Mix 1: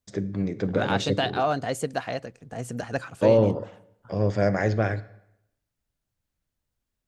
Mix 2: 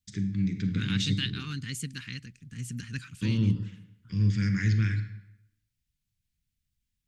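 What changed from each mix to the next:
first voice: send +10.0 dB; master: add Chebyshev band-stop 180–2400 Hz, order 2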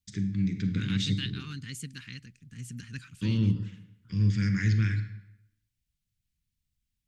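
second voice -4.0 dB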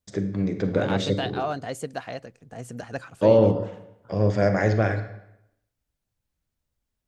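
master: remove Chebyshev band-stop 180–2400 Hz, order 2

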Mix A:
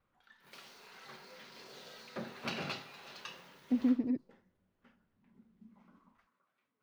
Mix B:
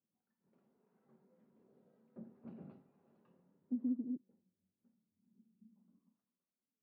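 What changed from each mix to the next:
background: remove high-pass 130 Hz 24 dB/octave; master: add ladder band-pass 240 Hz, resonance 45%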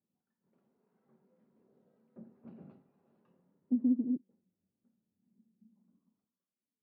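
speech +8.0 dB

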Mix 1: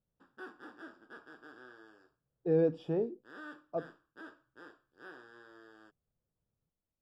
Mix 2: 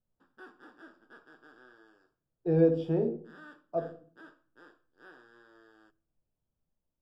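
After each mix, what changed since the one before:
background -3.5 dB; reverb: on, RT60 0.45 s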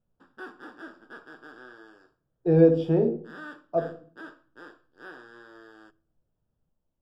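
speech +6.0 dB; background +9.5 dB

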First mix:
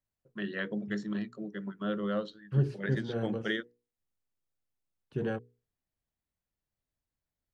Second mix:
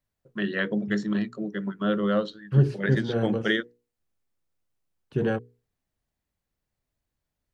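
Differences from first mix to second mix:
first voice +8.0 dB; second voice +7.5 dB

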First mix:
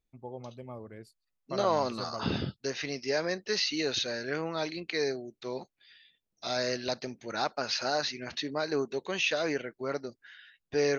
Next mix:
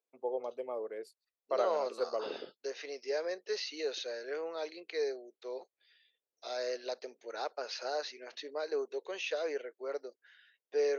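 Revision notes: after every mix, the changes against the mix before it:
first voice +11.0 dB; master: add ladder high-pass 400 Hz, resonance 55%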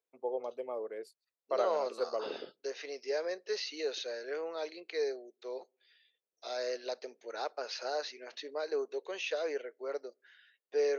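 reverb: on, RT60 0.50 s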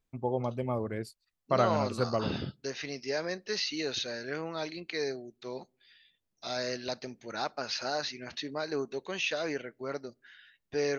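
second voice -3.5 dB; master: remove ladder high-pass 400 Hz, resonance 55%

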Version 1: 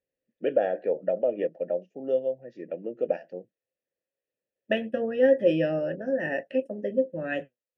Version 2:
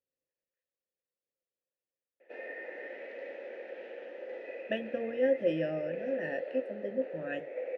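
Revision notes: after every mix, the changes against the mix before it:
first voice: muted; second voice -7.5 dB; background: unmuted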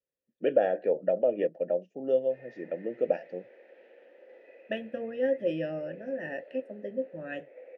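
first voice: unmuted; background -11.0 dB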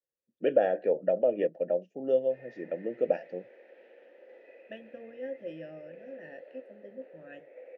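second voice -11.0 dB

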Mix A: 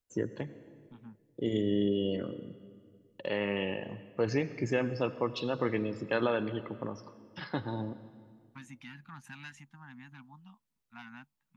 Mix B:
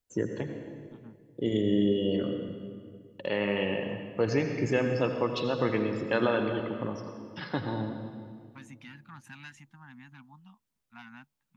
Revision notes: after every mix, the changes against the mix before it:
first voice: send +11.5 dB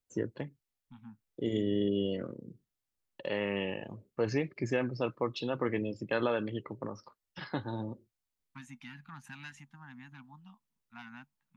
reverb: off

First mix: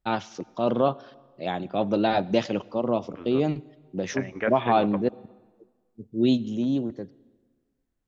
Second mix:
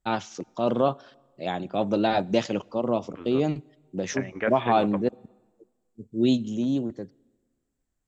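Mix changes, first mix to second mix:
first voice: send -6.5 dB; master: add peaking EQ 7.6 kHz +11.5 dB 0.45 oct

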